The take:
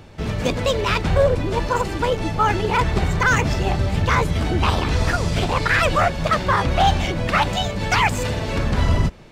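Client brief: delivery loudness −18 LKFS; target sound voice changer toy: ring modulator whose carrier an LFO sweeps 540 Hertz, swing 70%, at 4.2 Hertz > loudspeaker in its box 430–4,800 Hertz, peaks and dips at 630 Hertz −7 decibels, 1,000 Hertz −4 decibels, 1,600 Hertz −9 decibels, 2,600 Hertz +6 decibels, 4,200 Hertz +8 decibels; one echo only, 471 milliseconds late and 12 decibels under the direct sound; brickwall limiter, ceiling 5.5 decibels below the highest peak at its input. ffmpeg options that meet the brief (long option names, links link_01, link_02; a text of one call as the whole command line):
ffmpeg -i in.wav -af "alimiter=limit=-10dB:level=0:latency=1,aecho=1:1:471:0.251,aeval=exprs='val(0)*sin(2*PI*540*n/s+540*0.7/4.2*sin(2*PI*4.2*n/s))':channel_layout=same,highpass=430,equalizer=frequency=630:width_type=q:width=4:gain=-7,equalizer=frequency=1000:width_type=q:width=4:gain=-4,equalizer=frequency=1600:width_type=q:width=4:gain=-9,equalizer=frequency=2600:width_type=q:width=4:gain=6,equalizer=frequency=4200:width_type=q:width=4:gain=8,lowpass=frequency=4800:width=0.5412,lowpass=frequency=4800:width=1.3066,volume=7.5dB" out.wav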